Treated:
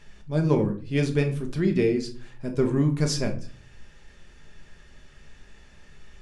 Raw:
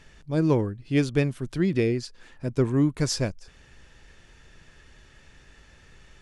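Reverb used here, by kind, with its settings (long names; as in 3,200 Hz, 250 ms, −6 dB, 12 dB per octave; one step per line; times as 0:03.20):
rectangular room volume 310 cubic metres, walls furnished, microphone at 1.3 metres
level −2 dB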